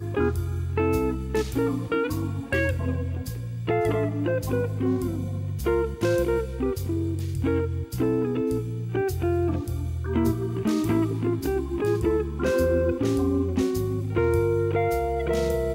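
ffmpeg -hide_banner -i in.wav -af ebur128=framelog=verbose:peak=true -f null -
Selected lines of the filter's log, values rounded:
Integrated loudness:
  I:         -25.8 LUFS
  Threshold: -35.8 LUFS
Loudness range:
  LRA:         2.5 LU
  Threshold: -45.9 LUFS
  LRA low:   -26.8 LUFS
  LRA high:  -24.3 LUFS
True peak:
  Peak:      -11.8 dBFS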